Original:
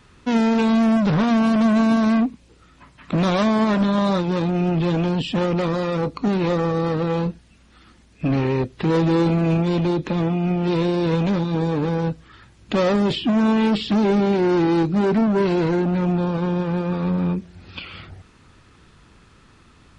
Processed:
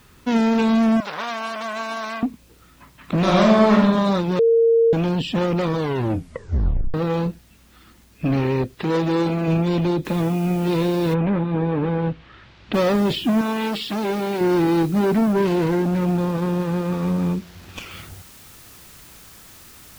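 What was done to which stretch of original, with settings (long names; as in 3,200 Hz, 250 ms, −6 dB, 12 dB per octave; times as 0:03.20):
0:01.00–0:02.23: high-pass filter 810 Hz
0:03.18–0:03.81: thrown reverb, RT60 0.86 s, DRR −1.5 dB
0:04.39–0:04.93: beep over 459 Hz −12 dBFS
0:05.67: tape stop 1.27 s
0:08.74–0:09.48: low-shelf EQ 180 Hz −8.5 dB
0:10.05: noise floor change −60 dB −46 dB
0:11.13–0:12.73: low-pass filter 2,300 Hz → 4,100 Hz 24 dB per octave
0:13.41–0:14.41: low-shelf EQ 300 Hz −12 dB
0:15.33–0:17.91: windowed peak hold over 5 samples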